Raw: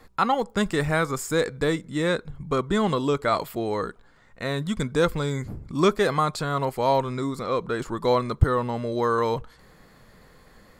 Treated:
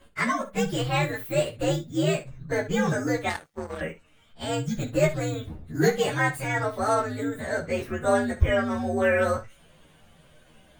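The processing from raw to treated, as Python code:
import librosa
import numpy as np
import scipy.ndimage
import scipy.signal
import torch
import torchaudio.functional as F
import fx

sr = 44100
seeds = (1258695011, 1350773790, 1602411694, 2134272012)

y = fx.partial_stretch(x, sr, pct=126)
y = fx.room_early_taps(y, sr, ms=(13, 25, 66), db=(-4.5, -11.5, -12.5))
y = fx.power_curve(y, sr, exponent=2.0, at=(3.29, 3.81))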